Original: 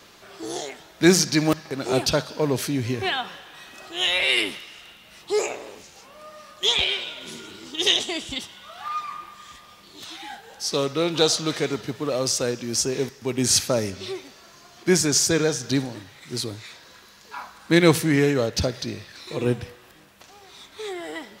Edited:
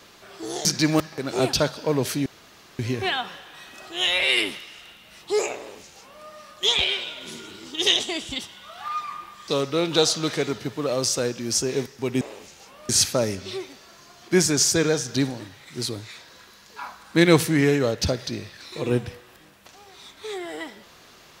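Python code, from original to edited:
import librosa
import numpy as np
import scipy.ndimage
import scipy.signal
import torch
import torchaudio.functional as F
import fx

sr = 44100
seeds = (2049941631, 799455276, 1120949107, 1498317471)

y = fx.edit(x, sr, fx.cut(start_s=0.65, length_s=0.53),
    fx.insert_room_tone(at_s=2.79, length_s=0.53),
    fx.duplicate(start_s=5.57, length_s=0.68, to_s=13.44),
    fx.cut(start_s=9.48, length_s=1.23), tone=tone)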